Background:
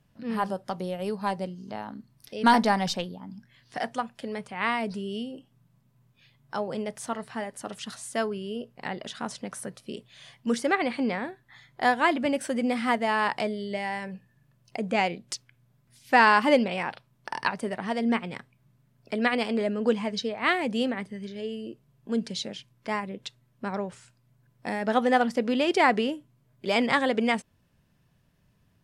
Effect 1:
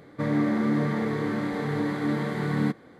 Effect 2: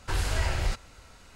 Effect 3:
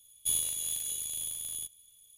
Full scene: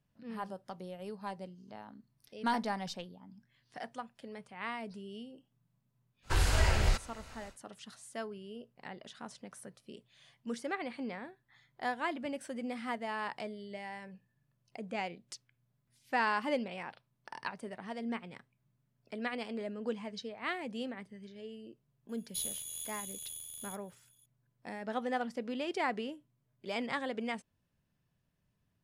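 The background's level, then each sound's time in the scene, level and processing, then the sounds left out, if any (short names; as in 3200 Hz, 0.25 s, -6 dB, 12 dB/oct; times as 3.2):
background -12.5 dB
6.22 add 2, fades 0.10 s
22.09 add 3 -8.5 dB
not used: 1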